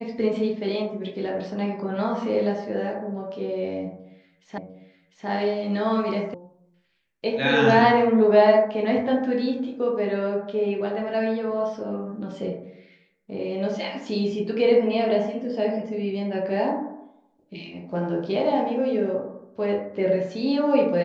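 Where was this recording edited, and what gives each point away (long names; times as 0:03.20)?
0:04.58: the same again, the last 0.7 s
0:06.34: cut off before it has died away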